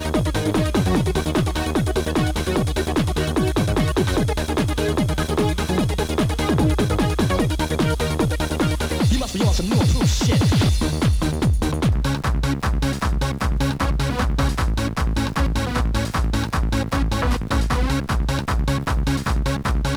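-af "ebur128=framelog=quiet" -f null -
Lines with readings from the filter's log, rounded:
Integrated loudness:
  I:         -21.1 LUFS
  Threshold: -31.1 LUFS
Loudness range:
  LRA:         2.6 LU
  Threshold: -41.0 LUFS
  LRA low:   -22.2 LUFS
  LRA high:  -19.5 LUFS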